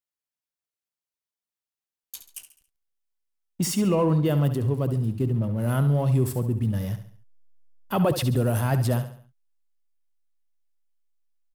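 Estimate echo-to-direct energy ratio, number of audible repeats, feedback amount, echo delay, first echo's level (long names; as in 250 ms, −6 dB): −10.0 dB, 4, 42%, 69 ms, −11.0 dB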